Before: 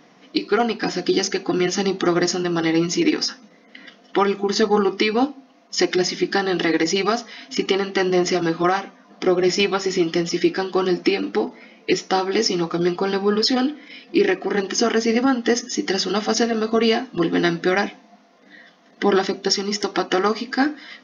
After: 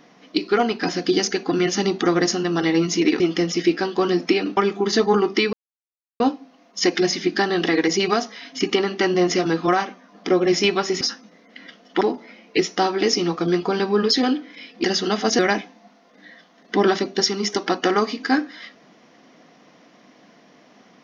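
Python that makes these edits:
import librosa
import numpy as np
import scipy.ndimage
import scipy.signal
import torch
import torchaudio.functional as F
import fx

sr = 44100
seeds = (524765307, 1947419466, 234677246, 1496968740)

y = fx.edit(x, sr, fx.swap(start_s=3.2, length_s=1.0, other_s=9.97, other_length_s=1.37),
    fx.insert_silence(at_s=5.16, length_s=0.67),
    fx.cut(start_s=14.17, length_s=1.71),
    fx.cut(start_s=16.43, length_s=1.24), tone=tone)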